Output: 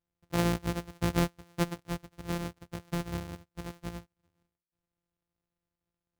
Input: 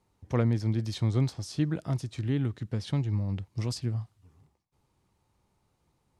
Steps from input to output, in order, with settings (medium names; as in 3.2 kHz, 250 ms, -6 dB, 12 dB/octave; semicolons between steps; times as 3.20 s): sorted samples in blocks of 256 samples; upward expansion 2.5:1, over -34 dBFS